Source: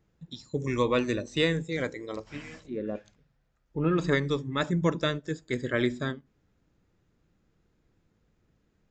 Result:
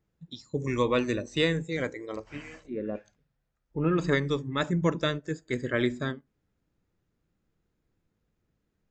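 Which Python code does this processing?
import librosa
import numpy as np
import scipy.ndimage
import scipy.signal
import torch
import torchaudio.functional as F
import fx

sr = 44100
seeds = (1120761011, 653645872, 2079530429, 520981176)

y = fx.noise_reduce_blind(x, sr, reduce_db=7)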